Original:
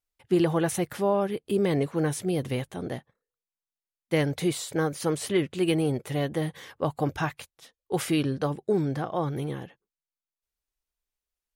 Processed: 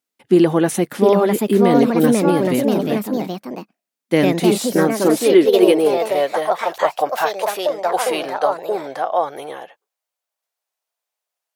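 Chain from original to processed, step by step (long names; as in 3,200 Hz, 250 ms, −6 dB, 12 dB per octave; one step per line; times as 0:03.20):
delay with pitch and tempo change per echo 757 ms, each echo +3 semitones, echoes 2
high-pass filter sweep 230 Hz → 660 Hz, 0:04.80–0:06.48
level +6.5 dB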